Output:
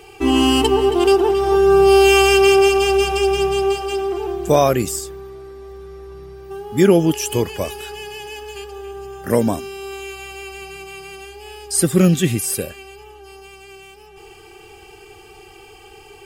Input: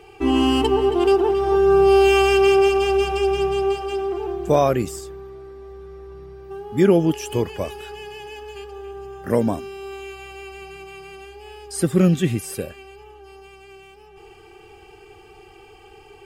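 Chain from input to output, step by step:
high-shelf EQ 4,000 Hz +10.5 dB
level +2.5 dB

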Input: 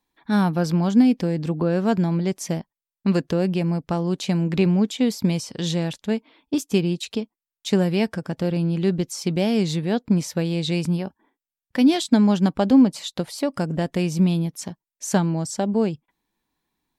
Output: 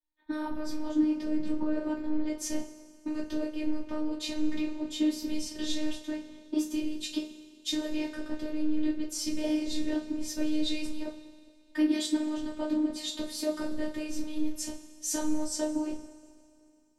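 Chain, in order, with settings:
brickwall limiter −13 dBFS, peak gain reduction 8 dB
downward compressor, threshold −25 dBFS, peak gain reduction 9 dB
coupled-rooms reverb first 0.25 s, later 3.9 s, from −22 dB, DRR −6.5 dB
phases set to zero 306 Hz
low-shelf EQ 69 Hz +12 dB
multiband upward and downward expander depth 40%
level −8 dB

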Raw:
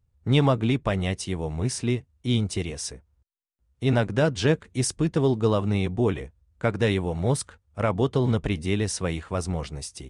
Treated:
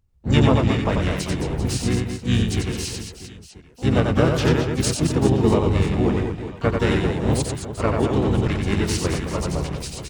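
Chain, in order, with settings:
reverse bouncing-ball delay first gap 90 ms, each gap 1.4×, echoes 5
pitch-shifted copies added −12 semitones −5 dB, −4 semitones −1 dB, +12 semitones −13 dB
level −1 dB

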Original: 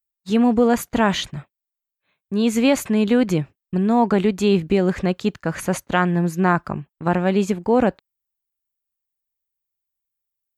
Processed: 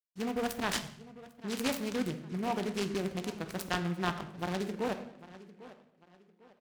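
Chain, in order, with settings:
adaptive Wiener filter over 25 samples
in parallel at −3 dB: brickwall limiter −15 dBFS, peak gain reduction 9.5 dB
on the sum: tempo change 1.6×
tape delay 798 ms, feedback 38%, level −16 dB, low-pass 3,600 Hz
noise gate with hold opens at −42 dBFS
first-order pre-emphasis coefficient 0.9
on a send at −7 dB: convolution reverb RT60 0.80 s, pre-delay 3 ms
on the sum: short delay modulated by noise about 1,500 Hz, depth 0.058 ms

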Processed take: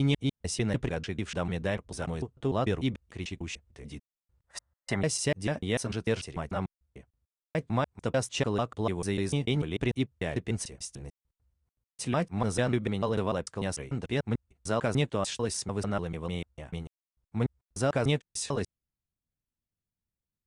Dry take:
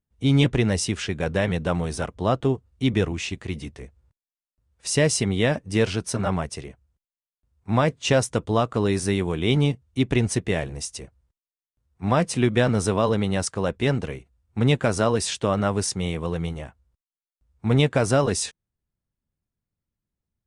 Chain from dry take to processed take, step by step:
slices reordered back to front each 148 ms, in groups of 3
gain on a spectral selection 0:04.47–0:05.01, 530–2,100 Hz +12 dB
level −7.5 dB

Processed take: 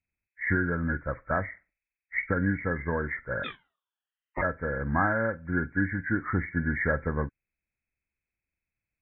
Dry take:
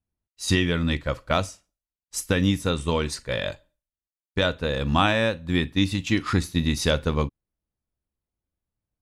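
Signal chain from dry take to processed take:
hearing-aid frequency compression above 1,300 Hz 4 to 1
0:03.43–0:04.41: ring modulation 2,000 Hz → 430 Hz
level −5.5 dB

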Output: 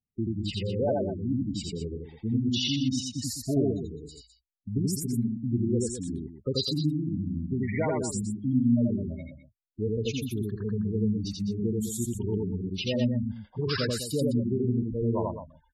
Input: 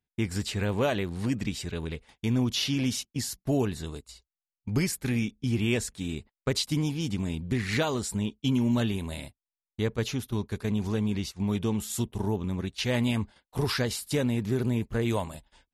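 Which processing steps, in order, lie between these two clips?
gate on every frequency bin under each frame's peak −10 dB strong
low-shelf EQ 140 Hz −5 dB
loudspeakers that aren't time-aligned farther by 29 metres −1 dB, 71 metres −10 dB

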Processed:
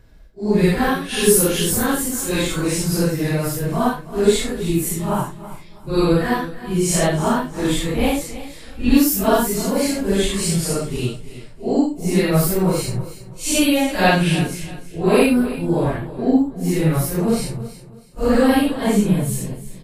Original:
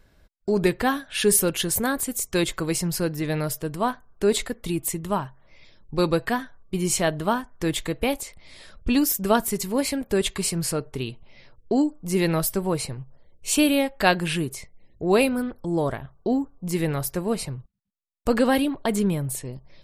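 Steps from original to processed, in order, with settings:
random phases in long frames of 200 ms
low-shelf EQ 170 Hz +7.5 dB
repeating echo 324 ms, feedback 29%, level −15 dB
level +4 dB

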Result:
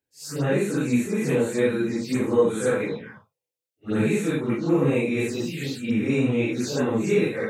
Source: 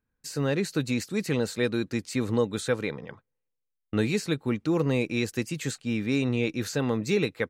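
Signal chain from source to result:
random phases in long frames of 200 ms
high-pass filter 140 Hz 12 dB per octave
phaser swept by the level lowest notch 200 Hz, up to 4,900 Hz, full sweep at −25 dBFS
level +5 dB

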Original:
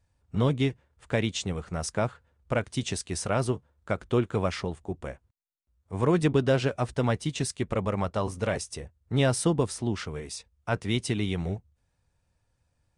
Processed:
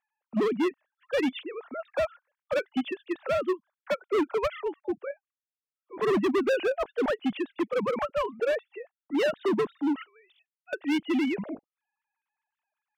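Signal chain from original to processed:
three sine waves on the formant tracks
0:10.03–0:10.73: first difference
hard clipping −25.5 dBFS, distortion −8 dB
expander for the loud parts 1.5 to 1, over −38 dBFS
level +4 dB

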